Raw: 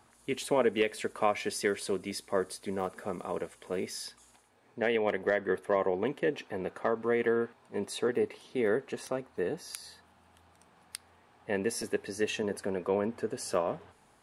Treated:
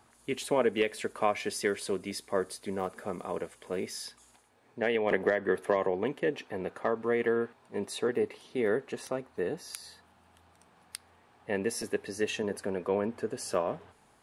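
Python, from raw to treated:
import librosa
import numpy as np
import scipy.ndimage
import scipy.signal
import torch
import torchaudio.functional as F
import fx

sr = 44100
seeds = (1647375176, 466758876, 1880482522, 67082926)

y = fx.band_squash(x, sr, depth_pct=100, at=(5.11, 5.87))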